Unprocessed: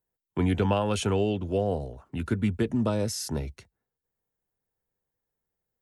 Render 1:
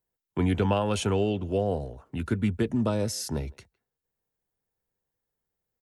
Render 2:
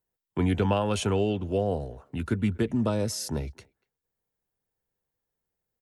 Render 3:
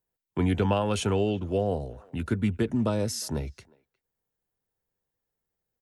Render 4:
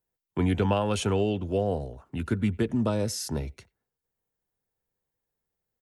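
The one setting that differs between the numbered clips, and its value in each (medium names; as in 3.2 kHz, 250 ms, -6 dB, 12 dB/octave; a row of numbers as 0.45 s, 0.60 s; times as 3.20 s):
speakerphone echo, time: 160 ms, 240 ms, 360 ms, 90 ms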